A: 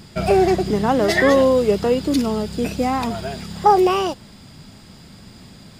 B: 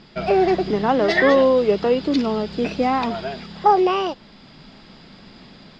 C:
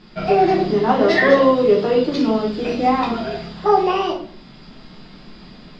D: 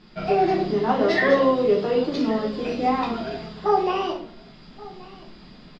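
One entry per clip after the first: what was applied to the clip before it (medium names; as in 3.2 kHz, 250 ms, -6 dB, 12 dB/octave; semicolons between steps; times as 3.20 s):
low-pass 4.7 kHz 24 dB/octave; peaking EQ 89 Hz -14.5 dB 1.3 oct; level rider gain up to 3.5 dB; trim -1.5 dB
simulated room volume 49 m³, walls mixed, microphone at 0.97 m; trim -3.5 dB
delay 1128 ms -20.5 dB; trim -5 dB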